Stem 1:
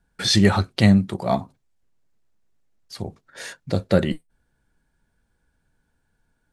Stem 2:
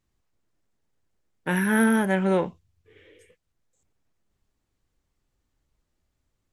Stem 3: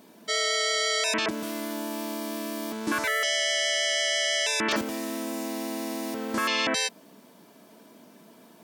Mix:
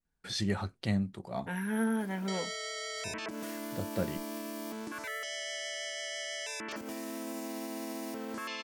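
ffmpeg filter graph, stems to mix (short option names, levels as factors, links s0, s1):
-filter_complex "[0:a]adelay=50,volume=0.168[s0];[1:a]aecho=1:1:4.3:0.58,volume=0.211[s1];[2:a]acompressor=threshold=0.0251:ratio=6,alimiter=level_in=2.37:limit=0.0631:level=0:latency=1:release=298,volume=0.422,adelay=2000,volume=1.12[s2];[s0][s1][s2]amix=inputs=3:normalize=0,adynamicequalizer=threshold=0.00141:dfrequency=3700:dqfactor=3.2:tfrequency=3700:tqfactor=3.2:attack=5:release=100:ratio=0.375:range=3:mode=cutabove:tftype=bell"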